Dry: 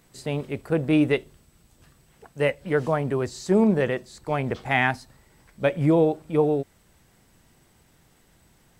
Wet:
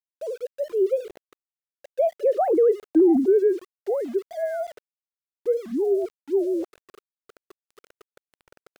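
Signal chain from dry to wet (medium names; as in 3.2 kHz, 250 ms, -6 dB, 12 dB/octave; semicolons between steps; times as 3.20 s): formants replaced by sine waves; Doppler pass-by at 2.76 s, 59 m/s, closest 7 m; low-pass 1.2 kHz 6 dB/octave; high-order bell 510 Hz +10.5 dB 1.3 oct; in parallel at -1 dB: compression, threshold -33 dBFS, peak gain reduction 16.5 dB; on the sum: peak limiter -20.5 dBFS, peak gain reduction 10 dB; reverse; upward compressor, threshold -29 dBFS; reverse; tilt EQ -4 dB/octave; small samples zeroed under -45.5 dBFS; trim +3.5 dB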